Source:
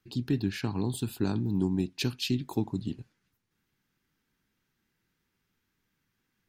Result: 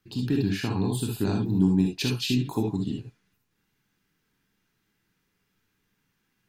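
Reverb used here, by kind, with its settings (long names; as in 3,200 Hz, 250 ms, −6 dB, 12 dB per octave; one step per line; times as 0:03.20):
reverb whose tail is shaped and stops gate 90 ms rising, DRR 0 dB
level +1.5 dB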